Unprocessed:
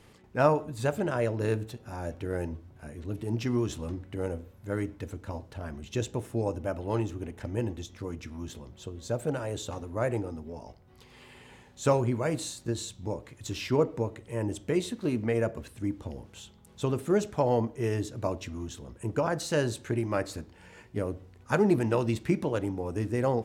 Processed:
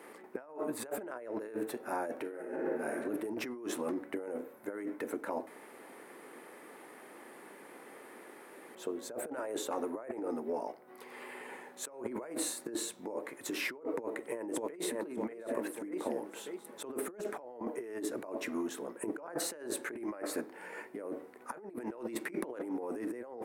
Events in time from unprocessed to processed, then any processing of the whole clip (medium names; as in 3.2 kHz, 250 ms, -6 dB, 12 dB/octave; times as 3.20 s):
2.15–2.94 s: reverb throw, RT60 1.3 s, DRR -1.5 dB
5.47–8.75 s: room tone
13.91–14.93 s: echo throw 590 ms, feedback 35%, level -5 dB
whole clip: high-pass 290 Hz 24 dB/octave; high-order bell 4.5 kHz -12 dB; compressor with a negative ratio -41 dBFS, ratio -1; trim +1 dB